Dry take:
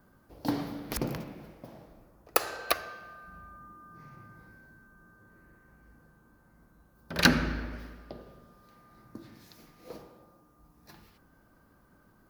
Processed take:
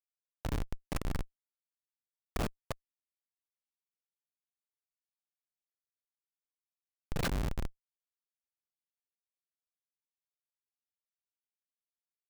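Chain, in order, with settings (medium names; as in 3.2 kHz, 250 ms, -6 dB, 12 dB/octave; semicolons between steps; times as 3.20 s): level held to a coarse grid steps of 19 dB; peaking EQ 16 kHz -2.5 dB 1.2 oct; Schmitt trigger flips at -32.5 dBFS; trim +12.5 dB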